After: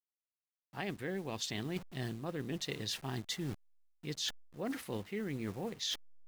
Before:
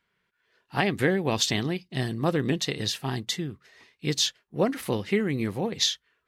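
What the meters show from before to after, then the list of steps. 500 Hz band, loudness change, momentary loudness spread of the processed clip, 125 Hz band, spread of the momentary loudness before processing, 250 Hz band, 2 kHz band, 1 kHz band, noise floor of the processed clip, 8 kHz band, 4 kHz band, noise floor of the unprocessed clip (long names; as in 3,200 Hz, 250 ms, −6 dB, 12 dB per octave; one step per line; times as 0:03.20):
−13.5 dB, −12.5 dB, 5 LU, −12.0 dB, 7 LU, −12.0 dB, −13.0 dB, −14.0 dB, below −85 dBFS, −12.0 dB, −11.5 dB, −77 dBFS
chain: hold until the input has moved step −40.5 dBFS
reversed playback
downward compressor 16 to 1, threshold −36 dBFS, peak gain reduction 19 dB
reversed playback
level +1 dB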